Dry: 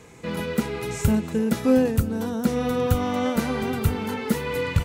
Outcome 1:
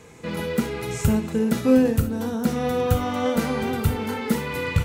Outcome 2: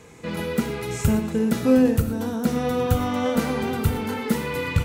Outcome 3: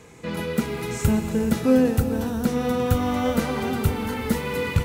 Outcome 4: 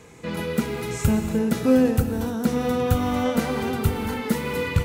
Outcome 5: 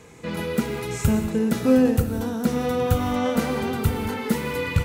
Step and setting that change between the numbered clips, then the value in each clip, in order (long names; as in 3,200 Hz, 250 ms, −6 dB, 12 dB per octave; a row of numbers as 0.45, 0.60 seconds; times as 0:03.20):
reverb whose tail is shaped and stops, gate: 90, 140, 510, 330, 220 milliseconds